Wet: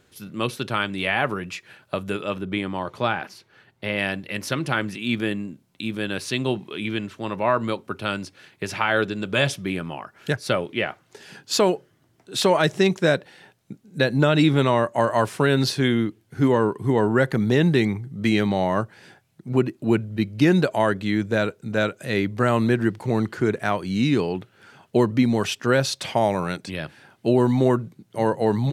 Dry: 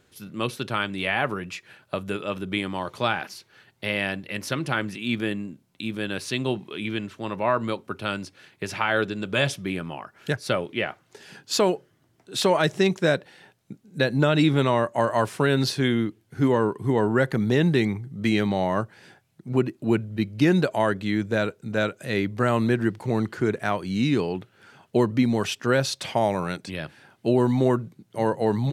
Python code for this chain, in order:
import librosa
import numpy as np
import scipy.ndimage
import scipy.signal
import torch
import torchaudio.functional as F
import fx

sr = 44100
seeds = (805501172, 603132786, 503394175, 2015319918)

y = fx.high_shelf(x, sr, hz=3100.0, db=-8.5, at=(2.36, 3.98))
y = y * 10.0 ** (2.0 / 20.0)